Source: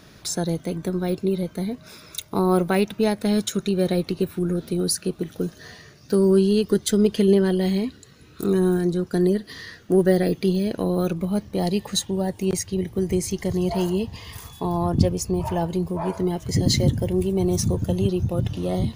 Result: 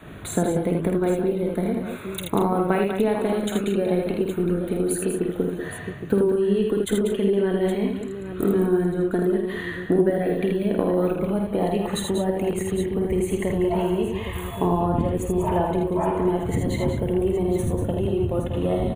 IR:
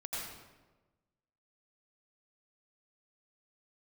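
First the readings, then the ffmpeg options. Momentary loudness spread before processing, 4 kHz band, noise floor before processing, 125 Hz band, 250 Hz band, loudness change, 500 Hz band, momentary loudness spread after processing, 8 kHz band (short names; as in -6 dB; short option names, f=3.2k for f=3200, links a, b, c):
10 LU, -7.0 dB, -49 dBFS, -2.5 dB, -1.0 dB, -0.5 dB, +1.0 dB, 5 LU, -6.0 dB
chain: -af "asuperstop=centerf=5200:order=4:qfactor=1.2,highshelf=f=3.2k:g=-10,acompressor=threshold=-26dB:ratio=6,aecho=1:1:50|80|190|227|817:0.422|0.631|0.398|0.2|0.282,adynamicequalizer=threshold=0.00794:dfrequency=140:dqfactor=0.91:tfrequency=140:tqfactor=0.91:attack=5:release=100:ratio=0.375:range=4:mode=cutabove:tftype=bell,volume=8dB"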